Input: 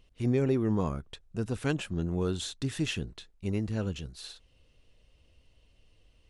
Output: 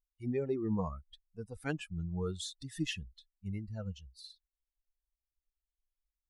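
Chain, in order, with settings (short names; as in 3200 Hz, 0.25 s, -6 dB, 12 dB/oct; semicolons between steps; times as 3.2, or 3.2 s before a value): per-bin expansion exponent 2; spectral noise reduction 8 dB; gain -1.5 dB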